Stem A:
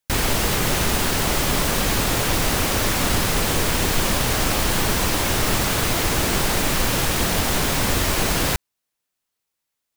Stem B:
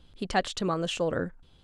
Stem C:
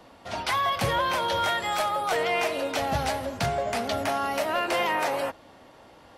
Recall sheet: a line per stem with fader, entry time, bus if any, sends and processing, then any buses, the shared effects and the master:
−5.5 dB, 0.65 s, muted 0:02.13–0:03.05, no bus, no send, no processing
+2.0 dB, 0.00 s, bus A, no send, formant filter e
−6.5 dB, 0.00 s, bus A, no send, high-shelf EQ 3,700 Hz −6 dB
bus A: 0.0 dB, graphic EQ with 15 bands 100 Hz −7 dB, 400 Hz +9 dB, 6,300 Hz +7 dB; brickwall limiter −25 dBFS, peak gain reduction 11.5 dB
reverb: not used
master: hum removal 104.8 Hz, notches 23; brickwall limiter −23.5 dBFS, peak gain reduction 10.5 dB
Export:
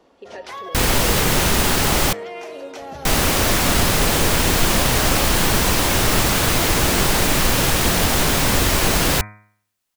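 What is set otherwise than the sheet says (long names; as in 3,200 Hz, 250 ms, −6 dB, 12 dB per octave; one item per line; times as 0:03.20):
stem A −5.5 dB → +3.5 dB
master: missing brickwall limiter −23.5 dBFS, peak gain reduction 10.5 dB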